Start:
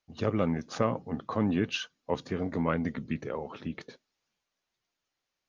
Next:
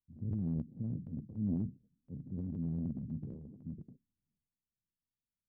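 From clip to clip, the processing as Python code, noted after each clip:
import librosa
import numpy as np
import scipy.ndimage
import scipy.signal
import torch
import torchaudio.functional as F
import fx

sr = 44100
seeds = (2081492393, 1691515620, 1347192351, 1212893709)

y = scipy.signal.sosfilt(scipy.signal.cheby2(4, 80, 1300.0, 'lowpass', fs=sr, output='sos'), x)
y = fx.transient(y, sr, attack_db=-3, sustain_db=10)
y = y * 10.0 ** (-3.0 / 20.0)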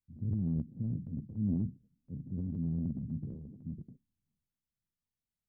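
y = fx.low_shelf(x, sr, hz=320.0, db=8.0)
y = y * 10.0 ** (-3.5 / 20.0)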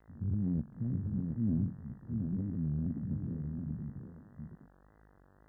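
y = fx.dmg_buzz(x, sr, base_hz=50.0, harmonics=37, level_db=-64.0, tilt_db=-4, odd_only=False)
y = fx.wow_flutter(y, sr, seeds[0], rate_hz=2.1, depth_cents=150.0)
y = y + 10.0 ** (-5.0 / 20.0) * np.pad(y, (int(725 * sr / 1000.0), 0))[:len(y)]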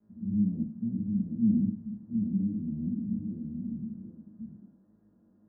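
y = fx.bandpass_q(x, sr, hz=240.0, q=2.2)
y = fx.rev_fdn(y, sr, rt60_s=0.37, lf_ratio=1.1, hf_ratio=0.75, size_ms=29.0, drr_db=-5.5)
y = y * 10.0 ** (-2.0 / 20.0)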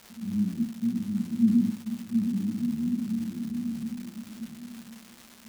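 y = fx.small_body(x, sr, hz=(240.0, 360.0), ring_ms=85, db=12)
y = fx.dmg_crackle(y, sr, seeds[1], per_s=510.0, level_db=-32.0)
y = y + 10.0 ** (-12.0 / 20.0) * np.pad(y, (int(1049 * sr / 1000.0), 0))[:len(y)]
y = y * 10.0 ** (-5.0 / 20.0)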